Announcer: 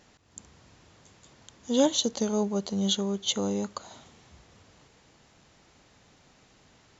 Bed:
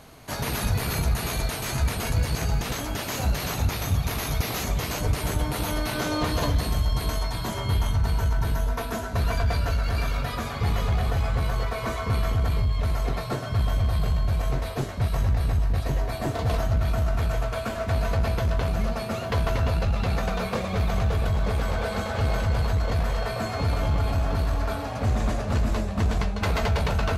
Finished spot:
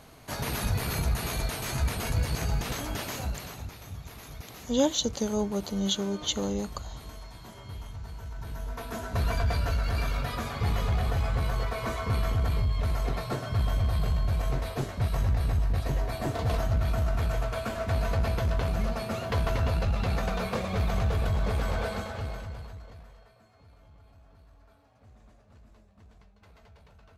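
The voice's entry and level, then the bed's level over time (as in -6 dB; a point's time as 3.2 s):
3.00 s, -1.5 dB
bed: 3.02 s -3.5 dB
3.75 s -17 dB
8.23 s -17 dB
9.15 s -3 dB
21.84 s -3 dB
23.42 s -32 dB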